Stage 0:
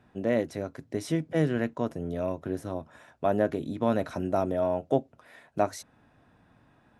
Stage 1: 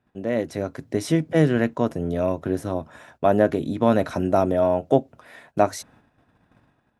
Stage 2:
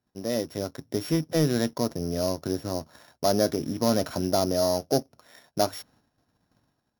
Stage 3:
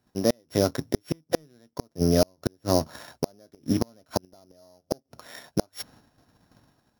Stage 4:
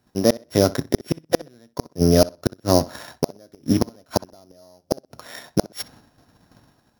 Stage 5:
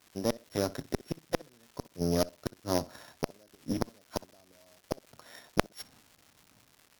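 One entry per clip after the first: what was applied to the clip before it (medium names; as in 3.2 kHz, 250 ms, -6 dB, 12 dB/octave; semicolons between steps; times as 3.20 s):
gate -59 dBFS, range -11 dB; level rider gain up to 7.5 dB
sorted samples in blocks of 8 samples; waveshaping leveller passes 1; trim -7.5 dB
inverted gate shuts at -18 dBFS, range -40 dB; trim +9 dB
tape echo 63 ms, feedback 22%, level -18 dB, low-pass 5.5 kHz; trim +5.5 dB
crackle 360 per s -33 dBFS; Chebyshev shaper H 3 -8 dB, 5 -19 dB, 6 -29 dB, 8 -42 dB, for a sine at -1 dBFS; trim -4 dB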